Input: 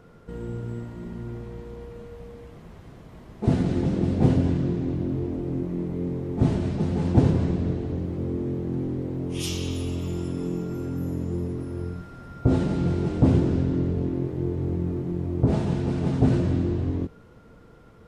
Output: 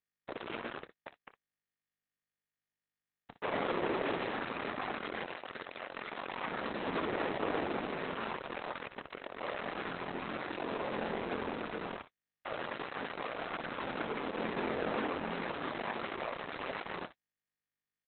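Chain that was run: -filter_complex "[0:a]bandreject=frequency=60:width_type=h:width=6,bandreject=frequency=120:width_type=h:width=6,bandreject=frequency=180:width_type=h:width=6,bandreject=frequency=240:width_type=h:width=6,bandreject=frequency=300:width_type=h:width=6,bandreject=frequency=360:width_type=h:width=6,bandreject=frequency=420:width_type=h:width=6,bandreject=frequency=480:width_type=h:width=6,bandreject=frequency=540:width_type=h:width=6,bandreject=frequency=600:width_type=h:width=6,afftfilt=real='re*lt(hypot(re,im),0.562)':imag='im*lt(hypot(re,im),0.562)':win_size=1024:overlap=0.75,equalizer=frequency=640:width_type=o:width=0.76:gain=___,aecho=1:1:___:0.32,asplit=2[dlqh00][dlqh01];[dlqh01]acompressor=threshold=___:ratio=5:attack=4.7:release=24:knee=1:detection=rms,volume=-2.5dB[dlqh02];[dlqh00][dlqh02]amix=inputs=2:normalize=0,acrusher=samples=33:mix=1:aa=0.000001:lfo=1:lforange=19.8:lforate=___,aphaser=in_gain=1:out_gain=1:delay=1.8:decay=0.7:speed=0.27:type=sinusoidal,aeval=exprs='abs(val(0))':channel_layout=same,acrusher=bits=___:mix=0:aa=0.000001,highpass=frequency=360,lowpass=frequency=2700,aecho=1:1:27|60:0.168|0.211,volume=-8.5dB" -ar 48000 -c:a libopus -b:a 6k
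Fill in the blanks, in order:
-5.5, 1.6, -44dB, 2.1, 3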